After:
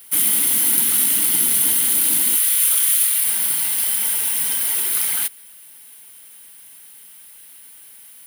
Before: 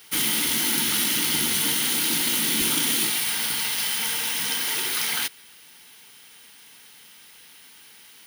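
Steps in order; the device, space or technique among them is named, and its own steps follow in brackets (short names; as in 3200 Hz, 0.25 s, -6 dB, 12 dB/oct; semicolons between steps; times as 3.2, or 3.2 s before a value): 2.36–3.24 HPF 1000 Hz 24 dB/oct; budget condenser microphone (HPF 60 Hz; resonant high shelf 7700 Hz +10.5 dB, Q 1.5); gain -3 dB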